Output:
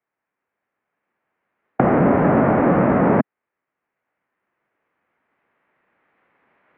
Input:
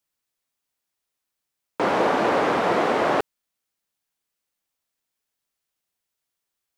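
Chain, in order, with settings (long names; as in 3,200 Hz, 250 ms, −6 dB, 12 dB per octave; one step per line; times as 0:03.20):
camcorder AGC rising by 6.8 dB per second
formants moved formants −6 semitones
single-sideband voice off tune −170 Hz 340–2,300 Hz
level +7 dB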